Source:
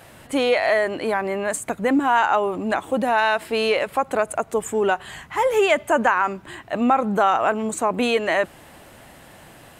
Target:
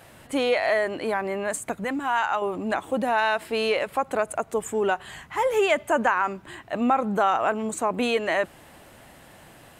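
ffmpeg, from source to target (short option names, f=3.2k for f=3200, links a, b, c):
-filter_complex "[0:a]asettb=1/sr,asplit=3[a][b][c];[a]atrim=end=1.844[d];[b]atrim=start=1.84:end=2.42,asetpts=PTS-STARTPTS,afade=t=in:d=0.004:c=qsin,afade=t=out:st=0.576:d=0.004:c=qsin,equalizer=f=360:w=0.66:g=-8[e];[c]atrim=start=2.416[f];[d][e]acrossfade=d=0.004:c1=hsin:c2=qsin[g];[g][f]acrossfade=d=0.004:c1=qsin:c2=hsin,volume=-3.5dB"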